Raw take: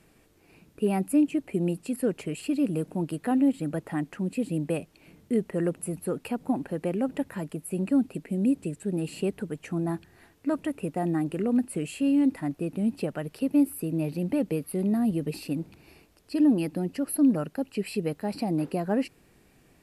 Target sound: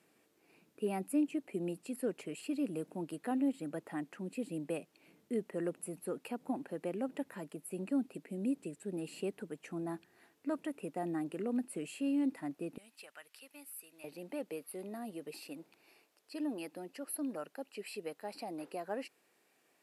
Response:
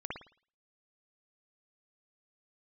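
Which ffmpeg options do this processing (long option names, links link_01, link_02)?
-af "asetnsamples=nb_out_samples=441:pad=0,asendcmd='12.78 highpass f 1500;14.04 highpass f 470',highpass=240,volume=-8dB"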